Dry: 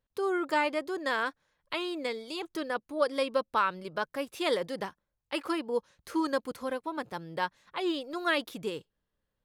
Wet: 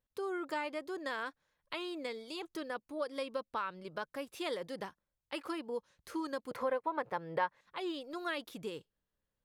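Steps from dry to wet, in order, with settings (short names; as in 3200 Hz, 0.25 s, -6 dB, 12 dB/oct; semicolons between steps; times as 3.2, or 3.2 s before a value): 6.51–7.61 graphic EQ 125/500/1000/2000/8000 Hz +7/+12/+10/+10/-3 dB; compressor 2:1, threshold -32 dBFS, peak gain reduction 11 dB; 3.4–3.88 high shelf 11000 Hz -11 dB; gain -5 dB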